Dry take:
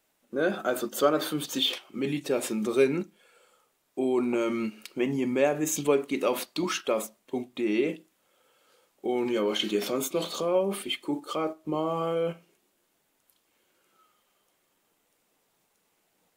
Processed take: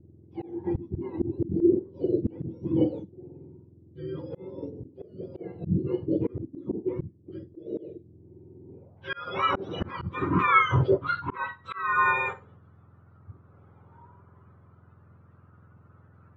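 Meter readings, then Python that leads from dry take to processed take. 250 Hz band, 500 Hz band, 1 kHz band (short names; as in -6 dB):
-0.5 dB, -4.5 dB, +6.0 dB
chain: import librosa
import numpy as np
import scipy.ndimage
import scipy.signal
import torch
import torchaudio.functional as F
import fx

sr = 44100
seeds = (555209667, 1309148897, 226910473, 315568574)

y = fx.octave_mirror(x, sr, pivot_hz=1100.0)
y = fx.filter_sweep_lowpass(y, sr, from_hz=340.0, to_hz=1300.0, start_s=8.67, end_s=9.17, q=5.0)
y = fx.auto_swell(y, sr, attack_ms=387.0)
y = y * librosa.db_to_amplitude(7.5)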